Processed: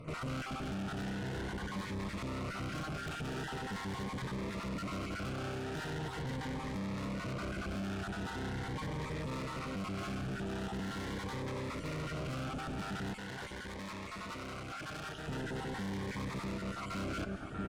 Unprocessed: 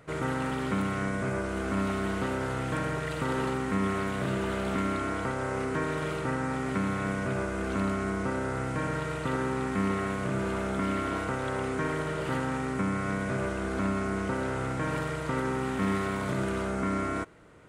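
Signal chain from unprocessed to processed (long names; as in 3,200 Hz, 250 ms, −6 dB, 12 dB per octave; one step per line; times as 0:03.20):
time-frequency cells dropped at random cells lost 29%
bass and treble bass +5 dB, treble −8 dB
single-tap delay 641 ms −16.5 dB
tube saturation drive 42 dB, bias 0.4
convolution reverb RT60 2.0 s, pre-delay 156 ms, DRR 15 dB
speech leveller within 5 dB 0.5 s
0:13.13–0:15.28: low-shelf EQ 460 Hz −8.5 dB
phaser whose notches keep moving one way rising 0.42 Hz
level +5.5 dB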